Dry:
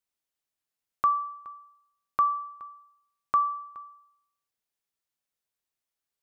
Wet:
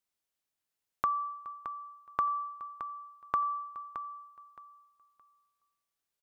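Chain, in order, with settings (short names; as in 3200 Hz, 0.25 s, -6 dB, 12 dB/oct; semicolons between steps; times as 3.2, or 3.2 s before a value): 1.21–2.22 de-hum 251.3 Hz, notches 4; compressor, threshold -27 dBFS, peak gain reduction 7.5 dB; on a send: feedback echo 0.619 s, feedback 23%, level -11 dB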